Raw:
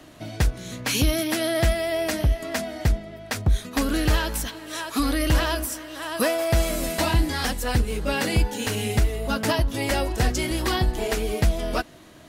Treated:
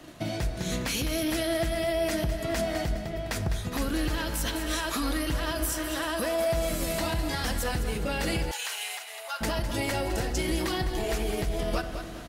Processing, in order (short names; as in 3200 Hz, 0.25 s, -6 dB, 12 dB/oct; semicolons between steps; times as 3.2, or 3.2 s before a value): compressor 5:1, threshold -28 dBFS, peak gain reduction 12 dB; feedback echo 0.205 s, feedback 37%, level -13 dB; limiter -25 dBFS, peak gain reduction 9.5 dB; shoebox room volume 3400 m³, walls mixed, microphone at 0.81 m; gate -46 dBFS, range -6 dB; 8.51–9.41 HPF 810 Hz 24 dB/oct; gain +4.5 dB